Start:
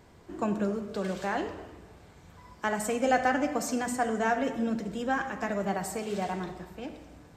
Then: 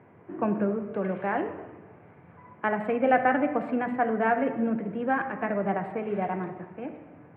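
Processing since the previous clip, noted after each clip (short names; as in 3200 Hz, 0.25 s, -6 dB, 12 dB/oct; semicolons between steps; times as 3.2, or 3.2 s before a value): Wiener smoothing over 9 samples; elliptic band-pass 110–2400 Hz, stop band 40 dB; gain +3.5 dB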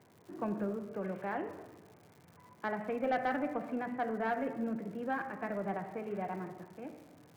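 soft clip -15 dBFS, distortion -20 dB; crackle 220/s -42 dBFS; gain -8.5 dB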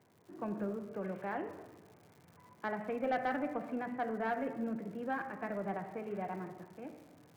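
AGC gain up to 3.5 dB; gain -5 dB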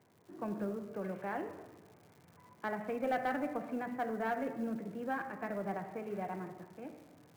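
short-mantissa float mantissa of 4-bit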